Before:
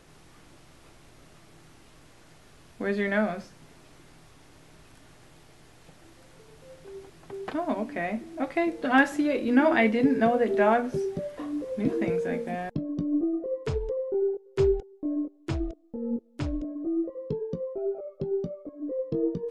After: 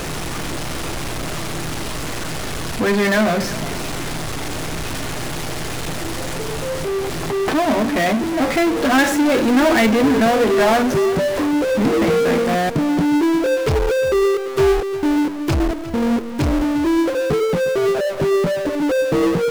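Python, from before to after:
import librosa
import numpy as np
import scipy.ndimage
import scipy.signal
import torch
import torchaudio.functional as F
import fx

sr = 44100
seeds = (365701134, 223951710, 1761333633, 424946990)

y = fx.power_curve(x, sr, exponent=0.35)
y = y + 10.0 ** (-16.0 / 20.0) * np.pad(y, (int(356 * sr / 1000.0), 0))[:len(y)]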